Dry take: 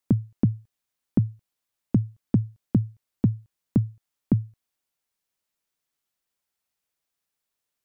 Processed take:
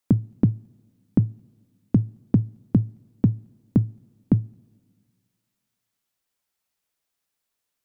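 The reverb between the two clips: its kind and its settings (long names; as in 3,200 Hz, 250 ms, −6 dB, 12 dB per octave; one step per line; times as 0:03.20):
coupled-rooms reverb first 0.26 s, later 1.9 s, from −18 dB, DRR 18 dB
level +2.5 dB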